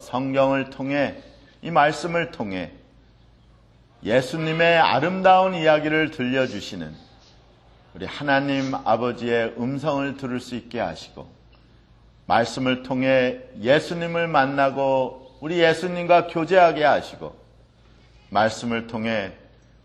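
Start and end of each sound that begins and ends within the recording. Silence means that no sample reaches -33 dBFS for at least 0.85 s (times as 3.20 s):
4.03–6.93 s
7.95–11.22 s
12.29–17.31 s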